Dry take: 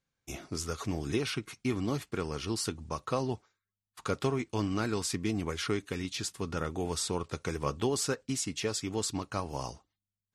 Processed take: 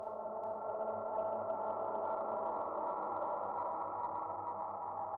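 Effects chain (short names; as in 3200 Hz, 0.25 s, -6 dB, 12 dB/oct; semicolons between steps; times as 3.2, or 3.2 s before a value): octaver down 1 oct, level -5 dB; HPF 650 Hz 12 dB/oct; compressor 4:1, threshold -39 dBFS, peak gain reduction 9 dB; hum 50 Hz, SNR 28 dB; Paulstretch 26×, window 0.50 s, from 5.23; flange 1 Hz, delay 0.5 ms, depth 3.4 ms, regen +87%; speed mistake 7.5 ips tape played at 15 ips; brick-wall FIR low-pass 1400 Hz; echo 0.437 s -4 dB; Schroeder reverb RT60 0.96 s, combs from 25 ms, DRR 3 dB; added harmonics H 6 -38 dB, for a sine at -35.5 dBFS; gain +11.5 dB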